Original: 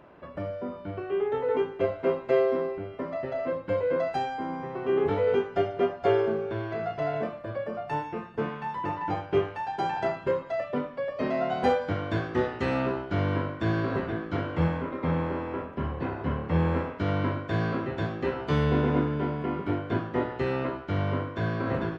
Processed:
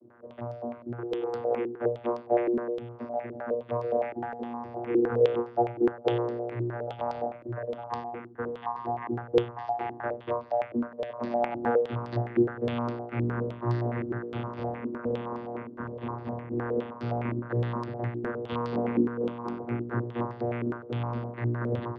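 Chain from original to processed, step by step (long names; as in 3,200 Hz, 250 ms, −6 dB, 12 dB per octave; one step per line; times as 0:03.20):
low-shelf EQ 290 Hz −7.5 dB
channel vocoder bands 16, saw 119 Hz
low-pass on a step sequencer 9.7 Hz 330–4,900 Hz
level −2 dB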